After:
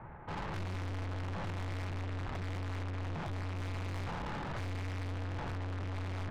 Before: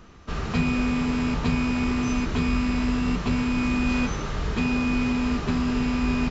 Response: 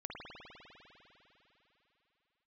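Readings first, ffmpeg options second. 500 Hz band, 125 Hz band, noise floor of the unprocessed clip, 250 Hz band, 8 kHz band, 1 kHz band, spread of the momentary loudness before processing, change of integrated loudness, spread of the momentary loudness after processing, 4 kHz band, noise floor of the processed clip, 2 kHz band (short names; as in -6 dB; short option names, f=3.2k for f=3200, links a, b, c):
-11.5 dB, -7.5 dB, -32 dBFS, -22.5 dB, n/a, -10.5 dB, 3 LU, -14.5 dB, 0 LU, -14.5 dB, -40 dBFS, -14.5 dB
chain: -af "bandreject=f=55.37:t=h:w=4,bandreject=f=110.74:t=h:w=4,bandreject=f=166.11:t=h:w=4,bandreject=f=221.48:t=h:w=4,bandreject=f=276.85:t=h:w=4,bandreject=f=332.22:t=h:w=4,highpass=f=170:t=q:w=0.5412,highpass=f=170:t=q:w=1.307,lowpass=f=2.2k:t=q:w=0.5176,lowpass=f=2.2k:t=q:w=0.7071,lowpass=f=2.2k:t=q:w=1.932,afreqshift=-340,aeval=exprs='(tanh(141*val(0)+0.35)-tanh(0.35))/141':c=same,volume=5.5dB"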